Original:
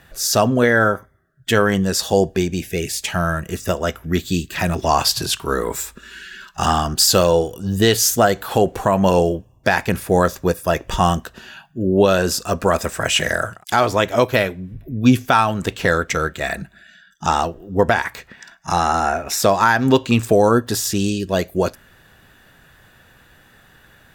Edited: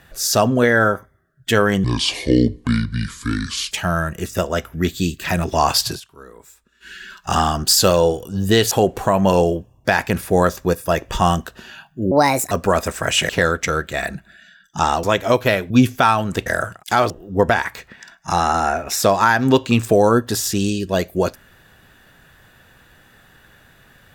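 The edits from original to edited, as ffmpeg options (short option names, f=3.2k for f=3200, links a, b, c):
-filter_complex "[0:a]asplit=13[a][b][c][d][e][f][g][h][i][j][k][l][m];[a]atrim=end=1.844[n];[b]atrim=start=1.84:end=3.02,asetpts=PTS-STARTPTS,asetrate=27783,aresample=44100[o];[c]atrim=start=3.016:end=5.31,asetpts=PTS-STARTPTS,afade=t=out:st=2.154:d=0.14:c=qsin:silence=0.0944061[p];[d]atrim=start=5.31:end=6.11,asetpts=PTS-STARTPTS,volume=-20.5dB[q];[e]atrim=start=6.11:end=8.022,asetpts=PTS-STARTPTS,afade=t=in:d=0.14:c=qsin:silence=0.0944061[r];[f]atrim=start=8.498:end=11.904[s];[g]atrim=start=11.9:end=12.49,asetpts=PTS-STARTPTS,asetrate=65268,aresample=44100,atrim=end_sample=17580,asetpts=PTS-STARTPTS[t];[h]atrim=start=12.486:end=13.272[u];[i]atrim=start=15.758:end=17.502[v];[j]atrim=start=13.908:end=14.582[w];[k]atrim=start=14.998:end=15.762[x];[l]atrim=start=13.268:end=13.912[y];[m]atrim=start=17.498[z];[n][o]acrossfade=d=0.004:c1=hsin:c2=hsin[aa];[p][q][r]concat=n=3:v=0:a=1[ab];[aa][ab]acrossfade=d=0.004:c1=hsin:c2=hsin[ac];[ac][s]acrossfade=d=0.004:c1=hsin:c2=hsin[ad];[ad][t]acrossfade=d=0.004:c1=hsin:c2=hsin[ae];[ae][u]acrossfade=d=0.004:c1=hsin:c2=hsin[af];[af][v]acrossfade=d=0.004:c1=hsin:c2=hsin[ag];[ag][w]acrossfade=d=0.004:c1=hsin:c2=hsin[ah];[ah][x]acrossfade=d=0.004:c1=hsin:c2=hsin[ai];[ai][y]acrossfade=d=0.004:c1=hsin:c2=hsin[aj];[aj][z]acrossfade=d=0.004:c1=hsin:c2=hsin"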